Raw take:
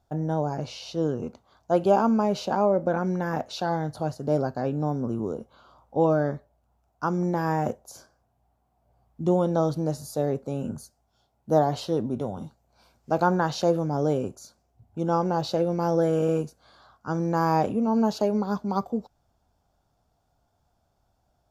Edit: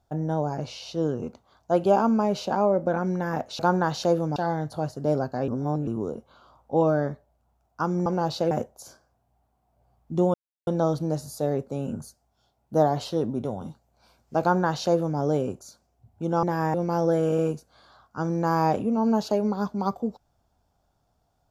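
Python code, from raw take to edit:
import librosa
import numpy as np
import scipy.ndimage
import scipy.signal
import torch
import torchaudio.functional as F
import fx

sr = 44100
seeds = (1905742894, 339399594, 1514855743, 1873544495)

y = fx.edit(x, sr, fx.reverse_span(start_s=4.71, length_s=0.39),
    fx.swap(start_s=7.29, length_s=0.31, other_s=15.19, other_length_s=0.45),
    fx.insert_silence(at_s=9.43, length_s=0.33),
    fx.duplicate(start_s=13.17, length_s=0.77, to_s=3.59), tone=tone)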